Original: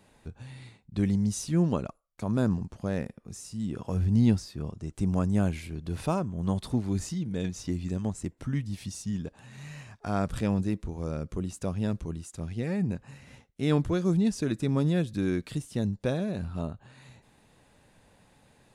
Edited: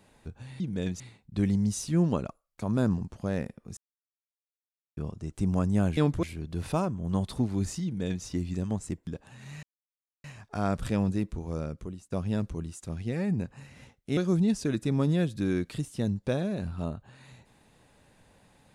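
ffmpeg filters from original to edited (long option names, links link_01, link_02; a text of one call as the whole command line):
ffmpeg -i in.wav -filter_complex "[0:a]asplit=11[link_01][link_02][link_03][link_04][link_05][link_06][link_07][link_08][link_09][link_10][link_11];[link_01]atrim=end=0.602[link_12];[link_02]atrim=start=7.178:end=7.582[link_13];[link_03]atrim=start=0.598:end=3.37,asetpts=PTS-STARTPTS,afade=type=out:start_time=2.768:duration=0.004:curve=hsin[link_14];[link_04]atrim=start=3.37:end=4.57,asetpts=PTS-STARTPTS,volume=0[link_15];[link_05]atrim=start=4.57:end=5.572,asetpts=PTS-STARTPTS,afade=type=in:duration=0.004:curve=hsin[link_16];[link_06]atrim=start=13.678:end=13.942[link_17];[link_07]atrim=start=5.568:end=8.412[link_18];[link_08]atrim=start=9.188:end=9.75,asetpts=PTS-STARTPTS,afade=type=out:start_time=0.558:duration=0.004:curve=hsin,apad=pad_dur=0.61[link_19];[link_09]atrim=start=9.75:end=11.63,asetpts=PTS-STARTPTS,afade=type=in:duration=0.004:curve=hsin,afade=type=out:start_time=1.34:duration=0.54:silence=0.1[link_20];[link_10]atrim=start=11.63:end=13.682,asetpts=PTS-STARTPTS,afade=type=in:duration=0.004:curve=hsin:silence=0.1[link_21];[link_11]atrim=start=13.938[link_22];[link_12][link_13]acrossfade=duration=0.004:curve1=hsin:curve2=hsin[link_23];[link_14][link_15][link_16]concat=n=3:v=0:a=1[link_24];[link_23][link_24]acrossfade=duration=0.004:curve1=hsin:curve2=hsin[link_25];[link_25][link_17]acrossfade=duration=0.004:curve1=hsin:curve2=hsin[link_26];[link_26][link_18]acrossfade=duration=0.004:curve1=hsin:curve2=hsin[link_27];[link_19][link_20][link_21]concat=n=3:v=0:a=1[link_28];[link_27][link_28]acrossfade=duration=0.004:curve1=hsin:curve2=hsin[link_29];[link_29][link_22]acrossfade=duration=0.004:curve1=hsin:curve2=hsin" out.wav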